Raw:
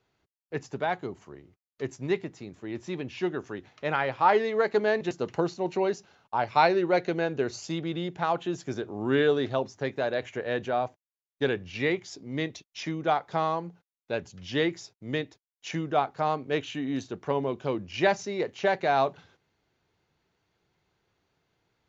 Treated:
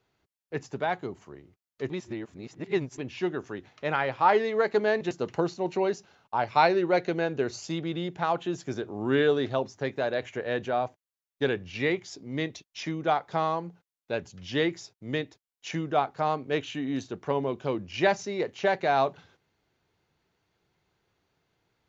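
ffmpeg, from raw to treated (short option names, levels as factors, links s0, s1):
-filter_complex "[0:a]asplit=3[s0][s1][s2];[s0]atrim=end=1.902[s3];[s1]atrim=start=1.898:end=2.982,asetpts=PTS-STARTPTS,areverse[s4];[s2]atrim=start=2.978[s5];[s3][s4]acrossfade=d=0.004:c1=hsin:c2=hsin[s6];[s6][s5]acrossfade=d=0.004:c1=hsin:c2=hsin"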